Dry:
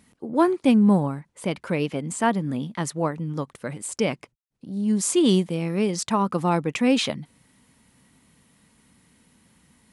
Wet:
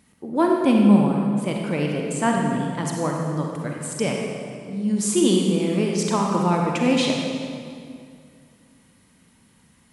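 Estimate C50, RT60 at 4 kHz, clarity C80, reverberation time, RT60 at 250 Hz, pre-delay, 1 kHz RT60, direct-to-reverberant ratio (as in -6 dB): 0.5 dB, 1.8 s, 2.5 dB, 2.3 s, 2.6 s, 34 ms, 2.2 s, 0.0 dB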